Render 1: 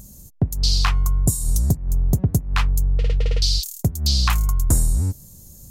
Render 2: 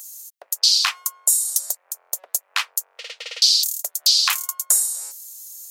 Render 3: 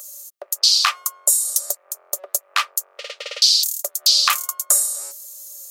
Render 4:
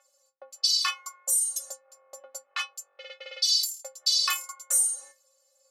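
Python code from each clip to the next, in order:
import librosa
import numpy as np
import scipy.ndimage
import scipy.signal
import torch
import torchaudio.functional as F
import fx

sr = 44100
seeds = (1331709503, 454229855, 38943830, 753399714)

y1 = scipy.signal.sosfilt(scipy.signal.ellip(4, 1.0, 70, 540.0, 'highpass', fs=sr, output='sos'), x)
y1 = fx.tilt_shelf(y1, sr, db=-10.0, hz=1300.0)
y2 = fx.small_body(y1, sr, hz=(380.0, 570.0, 1200.0), ring_ms=40, db=13)
y2 = F.gain(torch.from_numpy(y2), 1.0).numpy()
y3 = fx.env_lowpass(y2, sr, base_hz=2100.0, full_db=-13.0)
y3 = fx.stiff_resonator(y3, sr, f0_hz=260.0, decay_s=0.25, stiffness=0.008)
y3 = F.gain(torch.from_numpy(y3), 4.0).numpy()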